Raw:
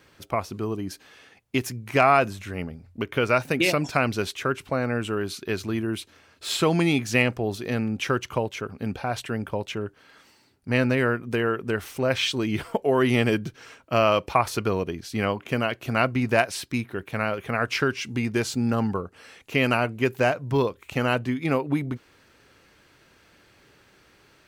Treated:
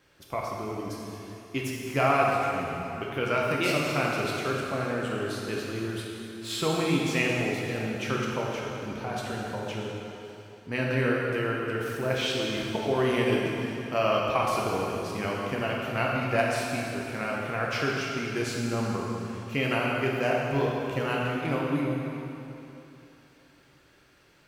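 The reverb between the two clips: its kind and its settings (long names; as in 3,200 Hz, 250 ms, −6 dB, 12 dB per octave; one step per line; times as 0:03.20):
dense smooth reverb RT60 3 s, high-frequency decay 0.9×, DRR −3.5 dB
level −8 dB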